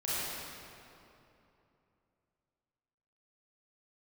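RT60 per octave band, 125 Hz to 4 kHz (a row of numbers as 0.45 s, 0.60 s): 3.4 s, 3.3 s, 3.0 s, 2.8 s, 2.3 s, 1.9 s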